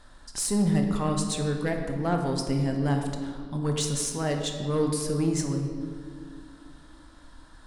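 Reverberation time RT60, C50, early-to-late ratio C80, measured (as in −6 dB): 2.1 s, 4.5 dB, 6.0 dB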